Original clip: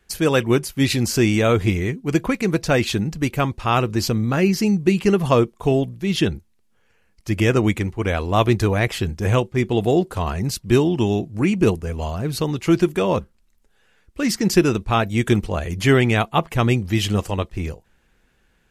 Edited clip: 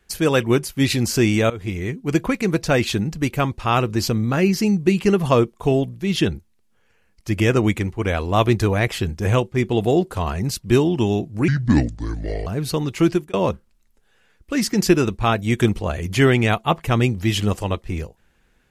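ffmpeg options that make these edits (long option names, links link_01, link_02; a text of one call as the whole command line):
ffmpeg -i in.wav -filter_complex "[0:a]asplit=5[link_01][link_02][link_03][link_04][link_05];[link_01]atrim=end=1.5,asetpts=PTS-STARTPTS,afade=type=out:start_time=1.496:duration=0.004:curve=hsin:silence=0.105925[link_06];[link_02]atrim=start=1.5:end=11.484,asetpts=PTS-STARTPTS,afade=type=in:duration=0.52:silence=0.105925[link_07];[link_03]atrim=start=11.48:end=12.14,asetpts=PTS-STARTPTS,asetrate=29547,aresample=44100[link_08];[link_04]atrim=start=12.136:end=13.01,asetpts=PTS-STARTPTS,afade=type=out:start_time=0.534:duration=0.34:curve=qsin[link_09];[link_05]atrim=start=13.01,asetpts=PTS-STARTPTS,afade=type=in:duration=0.004:curve=hsin[link_10];[link_06][link_07]concat=n=2:v=0:a=1[link_11];[link_11][link_08]acrossfade=duration=0.004:curve1=hsin:curve2=hsin[link_12];[link_09][link_10]concat=n=2:v=0:a=1[link_13];[link_12][link_13]acrossfade=duration=0.004:curve1=hsin:curve2=hsin" out.wav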